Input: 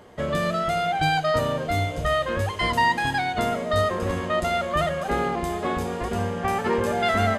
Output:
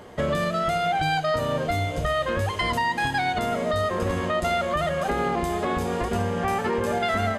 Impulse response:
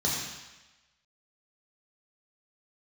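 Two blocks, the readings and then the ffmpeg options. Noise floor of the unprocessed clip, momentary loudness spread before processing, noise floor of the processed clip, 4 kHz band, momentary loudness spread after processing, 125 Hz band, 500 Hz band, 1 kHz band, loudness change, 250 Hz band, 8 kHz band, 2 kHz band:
−31 dBFS, 6 LU, −31 dBFS, −1.0 dB, 3 LU, −0.5 dB, −0.5 dB, −1.0 dB, −0.5 dB, 0.0 dB, −0.5 dB, −1.0 dB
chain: -af "alimiter=limit=-20dB:level=0:latency=1:release=256,volume=4.5dB"

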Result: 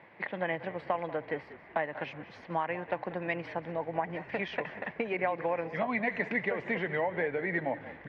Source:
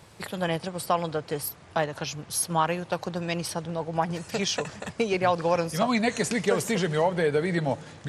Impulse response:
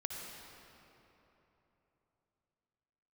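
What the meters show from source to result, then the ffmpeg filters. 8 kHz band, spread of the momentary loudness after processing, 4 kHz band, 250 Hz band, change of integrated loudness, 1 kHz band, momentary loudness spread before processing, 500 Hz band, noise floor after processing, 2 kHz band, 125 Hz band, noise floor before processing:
below −40 dB, 6 LU, −16.0 dB, −8.5 dB, −6.5 dB, −6.5 dB, 7 LU, −6.5 dB, −53 dBFS, −1.0 dB, −11.5 dB, −50 dBFS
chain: -filter_complex "[0:a]acompressor=threshold=-25dB:ratio=6,highpass=270,equalizer=frequency=420:width_type=q:width=4:gain=-5,equalizer=frequency=1300:width_type=q:width=4:gain=-8,equalizer=frequency=2000:width_type=q:width=4:gain=9,lowpass=frequency=2300:width=0.5412,lowpass=frequency=2300:width=1.3066,asplit=2[link_01][link_02];[link_02]asplit=3[link_03][link_04][link_05];[link_03]adelay=189,afreqshift=-47,volume=-15.5dB[link_06];[link_04]adelay=378,afreqshift=-94,volume=-24.4dB[link_07];[link_05]adelay=567,afreqshift=-141,volume=-33.2dB[link_08];[link_06][link_07][link_08]amix=inputs=3:normalize=0[link_09];[link_01][link_09]amix=inputs=2:normalize=0"

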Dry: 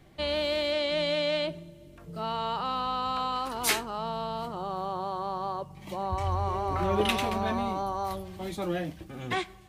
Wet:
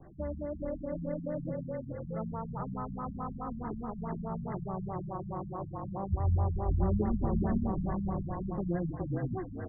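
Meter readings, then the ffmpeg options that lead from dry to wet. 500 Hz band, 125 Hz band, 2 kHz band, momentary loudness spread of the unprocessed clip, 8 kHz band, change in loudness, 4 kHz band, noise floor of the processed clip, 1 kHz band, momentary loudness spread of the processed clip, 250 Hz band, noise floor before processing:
−7.0 dB, +4.5 dB, −18.5 dB, 10 LU, below −40 dB, −4.5 dB, below −40 dB, −43 dBFS, −10.5 dB, 9 LU, +2.0 dB, −51 dBFS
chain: -filter_complex "[0:a]asplit=6[link_01][link_02][link_03][link_04][link_05][link_06];[link_02]adelay=415,afreqshift=-36,volume=-4.5dB[link_07];[link_03]adelay=830,afreqshift=-72,volume=-13.1dB[link_08];[link_04]adelay=1245,afreqshift=-108,volume=-21.8dB[link_09];[link_05]adelay=1660,afreqshift=-144,volume=-30.4dB[link_10];[link_06]adelay=2075,afreqshift=-180,volume=-39dB[link_11];[link_01][link_07][link_08][link_09][link_10][link_11]amix=inputs=6:normalize=0,acrossover=split=280[link_12][link_13];[link_13]acompressor=threshold=-41dB:ratio=4[link_14];[link_12][link_14]amix=inputs=2:normalize=0,afftfilt=real='re*lt(b*sr/1024,230*pow(2100/230,0.5+0.5*sin(2*PI*4.7*pts/sr)))':imag='im*lt(b*sr/1024,230*pow(2100/230,0.5+0.5*sin(2*PI*4.7*pts/sr)))':win_size=1024:overlap=0.75,volume=3.5dB"

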